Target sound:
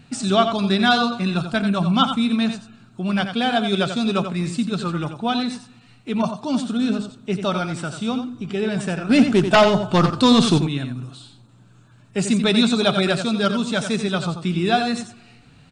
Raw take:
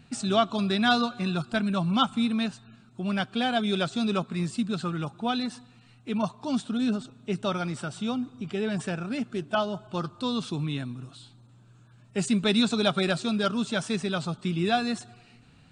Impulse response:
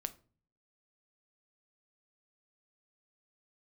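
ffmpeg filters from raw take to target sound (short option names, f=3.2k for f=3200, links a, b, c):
-filter_complex "[0:a]asettb=1/sr,asplit=3[a][b][c];[a]atrim=end=9.094[d];[b]atrim=start=9.09:end=10.58,asetpts=PTS-STARTPTS,afade=t=in:d=0.004:c=qsin,afade=t=out:st=1.486:d=0.004:c=qsin,aeval=exprs='0.211*sin(PI/2*2.24*val(0)/0.211)':c=same[e];[c]atrim=start=10.576[f];[d][e]acrossfade=d=0.004:c1=hsin:c2=qsin[g];[g][f]acrossfade=d=0.004:c1=qsin:c2=hsin,aecho=1:1:89:0.376,asplit=2[h][i];[1:a]atrim=start_sample=2205,asetrate=41454,aresample=44100[j];[i][j]afir=irnorm=-1:irlink=0,volume=0.5dB[k];[h][k]amix=inputs=2:normalize=0"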